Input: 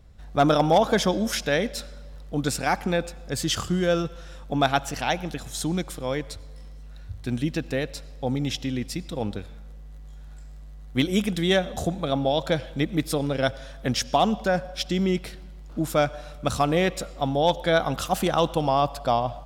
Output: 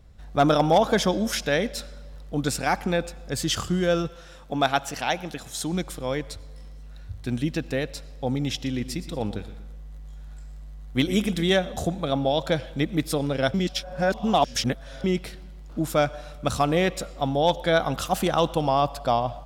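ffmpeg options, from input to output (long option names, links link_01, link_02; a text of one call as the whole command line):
ffmpeg -i in.wav -filter_complex "[0:a]asettb=1/sr,asplit=3[link_01][link_02][link_03];[link_01]atrim=end=4.104[link_04];[link_02]atrim=start=4.1:end=5.73,asetpts=PTS-STARTPTS,afade=type=in:duration=0.004:curve=qsin,afade=type=out:start_time=1.626:duration=0.004:curve=qsin,lowshelf=frequency=170:gain=-8[link_05];[link_03]atrim=start=5.726[link_06];[link_04][link_05]acrossfade=duration=0.004:curve1=hsin:curve2=qsin[link_07];[link_07][link_06]acrossfade=duration=0.004:curve1=qsin:curve2=hsin,asettb=1/sr,asplit=3[link_08][link_09][link_10];[link_08]atrim=end=8.544[link_11];[link_09]atrim=start=8.54:end=11.5,asetpts=PTS-STARTPTS,afade=type=in:duration=0.004:curve=qsin,afade=type=out:start_time=2.956:duration=0.004:curve=qsin,aecho=1:1:119|238|357:0.2|0.0678|0.0231,atrim=end_sample=130536[link_12];[link_10]atrim=start=11.496[link_13];[link_11][link_12]acrossfade=duration=0.004:curve1=hsin:curve2=qsin[link_14];[link_14][link_13]acrossfade=duration=0.004:curve1=qsin:curve2=hsin,asplit=3[link_15][link_16][link_17];[link_15]atrim=end=13.542[link_18];[link_16]atrim=start=13.538:end=15.042,asetpts=PTS-STARTPTS,areverse[link_19];[link_17]atrim=start=15.038[link_20];[link_18][link_19]acrossfade=duration=0.004:curve1=hsin:curve2=hsin[link_21];[link_21][link_20]acrossfade=duration=0.004:curve1=hsin:curve2=hsin" out.wav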